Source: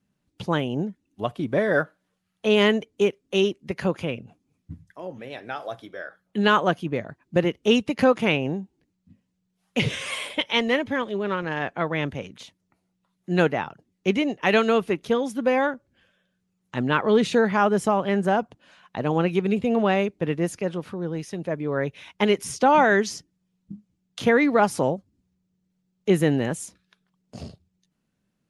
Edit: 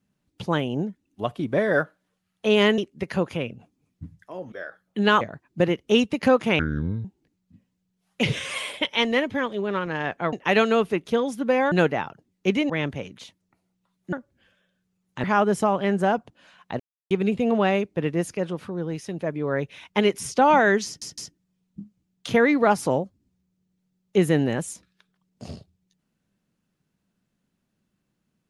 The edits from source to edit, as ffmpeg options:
-filter_complex "[0:a]asplit=15[s0][s1][s2][s3][s4][s5][s6][s7][s8][s9][s10][s11][s12][s13][s14];[s0]atrim=end=2.782[s15];[s1]atrim=start=3.458:end=5.202[s16];[s2]atrim=start=5.908:end=6.602[s17];[s3]atrim=start=6.968:end=8.354[s18];[s4]atrim=start=8.35:end=8.61,asetpts=PTS-STARTPTS,asetrate=25137,aresample=44100[s19];[s5]atrim=start=8.606:end=11.892[s20];[s6]atrim=start=14.298:end=15.692[s21];[s7]atrim=start=13.318:end=14.302[s22];[s8]atrim=start=11.888:end=13.322[s23];[s9]atrim=start=15.688:end=16.802[s24];[s10]atrim=start=17.478:end=19.04,asetpts=PTS-STARTPTS,afade=t=out:st=1.558:d=0.004:c=hsin[s25];[s11]atrim=start=19.04:end=19.35,asetpts=PTS-STARTPTS,volume=0[s26];[s12]atrim=start=19.35:end=23.262,asetpts=PTS-STARTPTS,afade=t=in:d=0.004:c=hsin[s27];[s13]atrim=start=23.098:end=23.262[s28];[s14]atrim=start=23.098[s29];[s15][s16]acrossfade=d=0.004:c1=hsin:c2=hsin[s30];[s30][s17]acrossfade=d=0.004:c1=hsin:c2=hsin[s31];[s31][s18]acrossfade=d=0.004:c1=hsin:c2=hsin[s32];[s32][s19]acrossfade=d=0.004:c1=hsin:c2=hsin[s33];[s33][s20]acrossfade=d=0.004:c1=hsin:c2=hsin[s34];[s34][s21]acrossfade=d=0.004:c1=hsin:c2=hsin[s35];[s35][s22]acrossfade=d=0.004:c1=hsin:c2=hsin[s36];[s36][s23]acrossfade=d=0.004:c1=hsin:c2=hsin[s37];[s37][s24]acrossfade=d=0.004:c1=hsin:c2=hsin[s38];[s25][s26][s27]concat=n=3:v=0:a=1[s39];[s38][s39]acrossfade=d=0.004:c1=hsin:c2=hsin[s40];[s40][s28]acrossfade=d=0.004:c1=hsin:c2=hsin[s41];[s41][s29]acrossfade=d=0.004:c1=hsin:c2=hsin"

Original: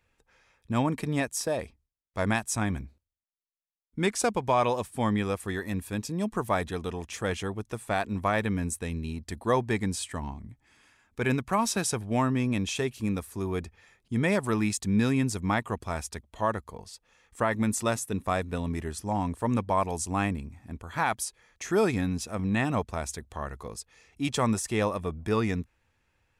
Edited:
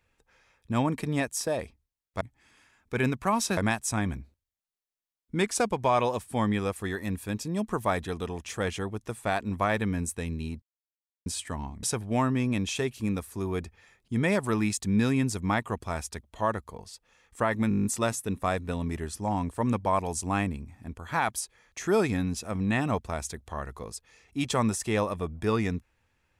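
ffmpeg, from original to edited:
-filter_complex "[0:a]asplit=14[s0][s1][s2][s3][s4][s5][s6][s7][s8][s9][s10][s11][s12][s13];[s0]atrim=end=2.212[s14];[s1]atrim=start=10.468:end=11.832[s15];[s2]atrim=start=2.208:end=9.26,asetpts=PTS-STARTPTS,afade=t=out:st=7.048:d=0.004:c=hsin[s16];[s3]atrim=start=9.26:end=9.9,asetpts=PTS-STARTPTS,volume=0[s17];[s4]atrim=start=9.9:end=10.472,asetpts=PTS-STARTPTS,afade=t=in:d=0.004:c=hsin[s18];[s5]atrim=start=11.828:end=17.712[s19];[s6]atrim=start=17.688:end=17.712[s20];[s7]atrim=start=17.688:end=17.712[s21];[s8]atrim=start=17.688:end=17.712[s22];[s9]atrim=start=17.688:end=17.712[s23];[s10]atrim=start=17.688:end=17.712[s24];[s11]atrim=start=17.688:end=17.712[s25];[s12]atrim=start=17.688:end=17.712[s26];[s13]atrim=start=17.688[s27];[s14][s15]acrossfade=d=0.004:c1=hsin:c2=hsin[s28];[s16][s17][s18]concat=n=3:v=0:a=1[s29];[s28][s29]acrossfade=d=0.004:c1=hsin:c2=hsin[s30];[s30][s19]acrossfade=d=0.004:c1=hsin:c2=hsin[s31];[s31][s20]acrossfade=d=0.004:c1=hsin:c2=hsin[s32];[s32][s21]acrossfade=d=0.004:c1=hsin:c2=hsin[s33];[s33][s22]acrossfade=d=0.004:c1=hsin:c2=hsin[s34];[s34][s23]acrossfade=d=0.004:c1=hsin:c2=hsin[s35];[s35][s24]acrossfade=d=0.004:c1=hsin:c2=hsin[s36];[s36][s25]acrossfade=d=0.004:c1=hsin:c2=hsin[s37];[s37][s26]acrossfade=d=0.004:c1=hsin:c2=hsin[s38];[s38][s27]acrossfade=d=0.004:c1=hsin:c2=hsin"

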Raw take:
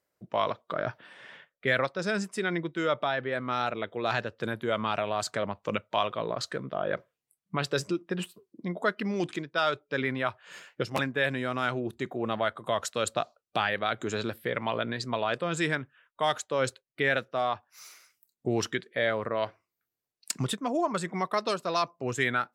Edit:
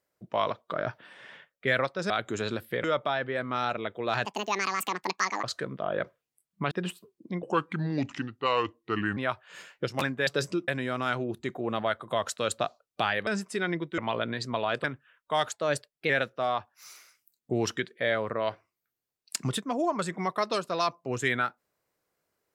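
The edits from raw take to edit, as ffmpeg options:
-filter_complex "[0:a]asplit=15[s0][s1][s2][s3][s4][s5][s6][s7][s8][s9][s10][s11][s12][s13][s14];[s0]atrim=end=2.102[s15];[s1]atrim=start=13.828:end=14.572[s16];[s2]atrim=start=2.808:end=4.224[s17];[s3]atrim=start=4.22:end=6.36,asetpts=PTS-STARTPTS,asetrate=79821,aresample=44100,atrim=end_sample=52140,asetpts=PTS-STARTPTS[s18];[s4]atrim=start=6.356:end=7.642[s19];[s5]atrim=start=8.048:end=8.764[s20];[s6]atrim=start=8.76:end=10.14,asetpts=PTS-STARTPTS,asetrate=34839,aresample=44100,atrim=end_sample=77035,asetpts=PTS-STARTPTS[s21];[s7]atrim=start=10.136:end=11.242[s22];[s8]atrim=start=7.638:end=8.052[s23];[s9]atrim=start=11.238:end=13.832[s24];[s10]atrim=start=2.098:end=2.812[s25];[s11]atrim=start=14.568:end=15.432[s26];[s12]atrim=start=15.728:end=16.414[s27];[s13]atrim=start=16.41:end=17.05,asetpts=PTS-STARTPTS,asetrate=48951,aresample=44100,atrim=end_sample=25427,asetpts=PTS-STARTPTS[s28];[s14]atrim=start=17.046[s29];[s15][s16]acrossfade=d=0.004:c1=hsin:c2=hsin[s30];[s30][s17]acrossfade=d=0.004:c1=hsin:c2=hsin[s31];[s31][s18]acrossfade=d=0.004:c1=hsin:c2=hsin[s32];[s32][s19]acrossfade=d=0.004:c1=hsin:c2=hsin[s33];[s33][s20]acrossfade=d=0.004:c1=hsin:c2=hsin[s34];[s34][s21]acrossfade=d=0.004:c1=hsin:c2=hsin[s35];[s35][s22]acrossfade=d=0.004:c1=hsin:c2=hsin[s36];[s36][s23]acrossfade=d=0.004:c1=hsin:c2=hsin[s37];[s37][s24]acrossfade=d=0.004:c1=hsin:c2=hsin[s38];[s38][s25]acrossfade=d=0.004:c1=hsin:c2=hsin[s39];[s39][s26]acrossfade=d=0.004:c1=hsin:c2=hsin[s40];[s40][s27]acrossfade=d=0.004:c1=hsin:c2=hsin[s41];[s41][s28]acrossfade=d=0.004:c1=hsin:c2=hsin[s42];[s42][s29]acrossfade=d=0.004:c1=hsin:c2=hsin"

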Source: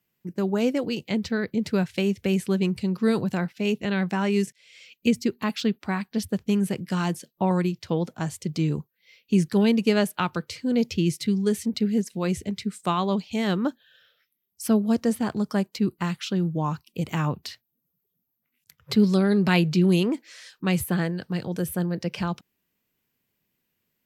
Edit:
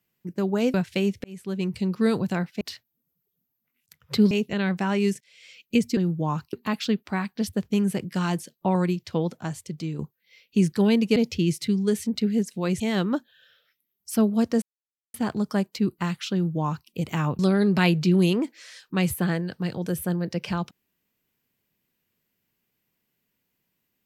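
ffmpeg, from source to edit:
-filter_complex "[0:a]asplit=12[s0][s1][s2][s3][s4][s5][s6][s7][s8][s9][s10][s11];[s0]atrim=end=0.742[s12];[s1]atrim=start=1.758:end=2.26,asetpts=PTS-STARTPTS,afade=t=out:st=0.498:d=0.004:c=hsin[s13];[s2]atrim=start=2.26:end=3.632,asetpts=PTS-STARTPTS,afade=t=in:d=0.58[s14];[s3]atrim=start=17.388:end=19.092[s15];[s4]atrim=start=3.628:end=5.292[s16];[s5]atrim=start=16.328:end=16.892[s17];[s6]atrim=start=5.288:end=8.75,asetpts=PTS-STARTPTS,afade=t=out:st=2.662:d=0.8:silence=0.375837[s18];[s7]atrim=start=8.75:end=9.922,asetpts=PTS-STARTPTS,afade=t=in:d=0.004:c=hsin:silence=0.375837[s19];[s8]atrim=start=10.748:end=12.392[s20];[s9]atrim=start=13.318:end=15.14,asetpts=PTS-STARTPTS,afade=t=out:st=1.818:d=0.004:c=hsin,apad=pad_dur=0.52[s21];[s10]atrim=start=15.14:end=17.392,asetpts=PTS-STARTPTS,afade=t=in:d=0.004:c=hsin[s22];[s11]atrim=start=19.088[s23];[s13][s14]concat=n=2:v=0:a=1[s24];[s12][s24]acrossfade=d=0.004:c1=hsin:c2=hsin[s25];[s25][s15]acrossfade=d=0.004:c1=hsin:c2=hsin[s26];[s26][s16]acrossfade=d=0.004:c1=hsin:c2=hsin[s27];[s27][s17]acrossfade=d=0.004:c1=hsin:c2=hsin[s28];[s18][s19]concat=n=2:v=0:a=1[s29];[s28][s29]acrossfade=d=0.004:c1=hsin:c2=hsin[s30];[s30][s20]acrossfade=d=0.004:c1=hsin:c2=hsin[s31];[s21][s22]concat=n=2:v=0:a=1[s32];[s31][s32]acrossfade=d=0.004:c1=hsin:c2=hsin[s33];[s33][s23]acrossfade=d=0.004:c1=hsin:c2=hsin"

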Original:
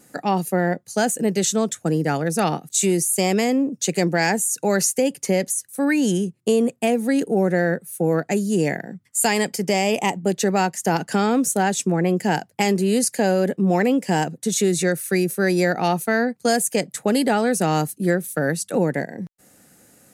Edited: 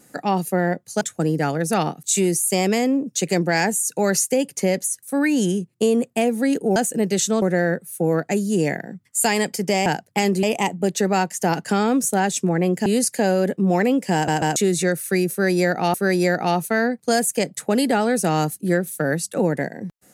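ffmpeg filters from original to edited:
-filter_complex "[0:a]asplit=11[s0][s1][s2][s3][s4][s5][s6][s7][s8][s9][s10];[s0]atrim=end=1.012[s11];[s1]atrim=start=1.668:end=7.422[s12];[s2]atrim=start=1.008:end=1.672[s13];[s3]atrim=start=7.418:end=9.862[s14];[s4]atrim=start=12.288:end=12.862[s15];[s5]atrim=start=9.858:end=12.292[s16];[s6]atrim=start=12.858:end=14.282[s17];[s7]atrim=start=14.138:end=14.282[s18];[s8]atrim=start=14.138:end=14.282[s19];[s9]atrim=start=14.558:end=15.942[s20];[s10]atrim=start=15.308[s21];[s11][s12]acrossfade=d=0.004:c1=hsin:c2=hsin[s22];[s22][s13]acrossfade=d=0.004:c1=hsin:c2=hsin[s23];[s23][s14]acrossfade=d=0.004:c1=hsin:c2=hsin[s24];[s24][s15]acrossfade=d=0.004:c1=hsin:c2=hsin[s25];[s25][s16]acrossfade=d=0.004:c1=hsin:c2=hsin[s26];[s26][s17]acrossfade=d=0.004:c1=hsin:c2=hsin[s27];[s27][s18]acrossfade=d=0.004:c1=hsin:c2=hsin[s28];[s28][s19]acrossfade=d=0.004:c1=hsin:c2=hsin[s29];[s29][s20]acrossfade=d=0.004:c1=hsin:c2=hsin[s30];[s30][s21]acrossfade=d=0.004:c1=hsin:c2=hsin"

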